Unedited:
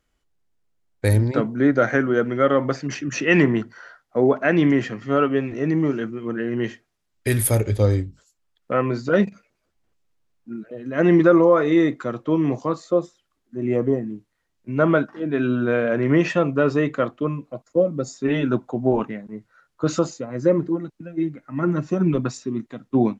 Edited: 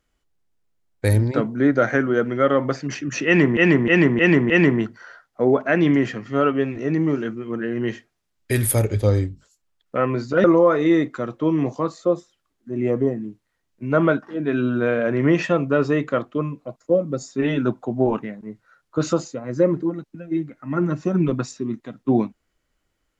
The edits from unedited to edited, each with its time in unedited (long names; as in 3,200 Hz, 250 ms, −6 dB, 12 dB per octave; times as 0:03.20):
0:03.26–0:03.57: repeat, 5 plays
0:09.20–0:11.30: remove